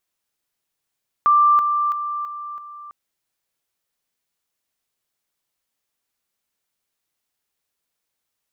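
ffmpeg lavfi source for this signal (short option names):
-f lavfi -i "aevalsrc='pow(10,(-11-6*floor(t/0.33))/20)*sin(2*PI*1180*t)':d=1.65:s=44100"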